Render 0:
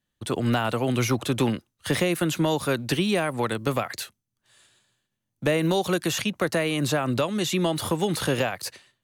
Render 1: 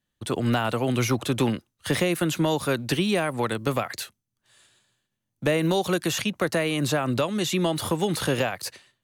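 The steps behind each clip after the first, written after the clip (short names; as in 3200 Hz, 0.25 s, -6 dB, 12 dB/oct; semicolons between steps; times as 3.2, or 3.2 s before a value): nothing audible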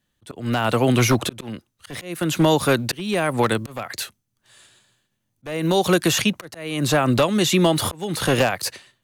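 one-sided fold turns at -16 dBFS; short-mantissa float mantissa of 6-bit; auto swell 0.438 s; gain +7 dB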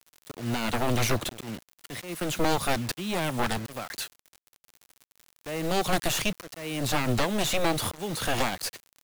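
one-sided fold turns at -22 dBFS; crackle 99/s -34 dBFS; requantised 6-bit, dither none; gain -5 dB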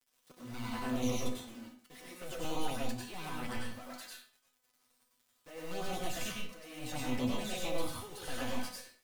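envelope flanger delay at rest 8.4 ms, full sweep at -20.5 dBFS; resonator 250 Hz, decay 0.24 s, harmonics all, mix 80%; reverb RT60 0.45 s, pre-delay 90 ms, DRR -3 dB; gain -3.5 dB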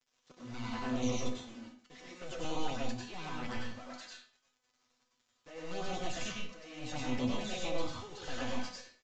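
downsampling 16000 Hz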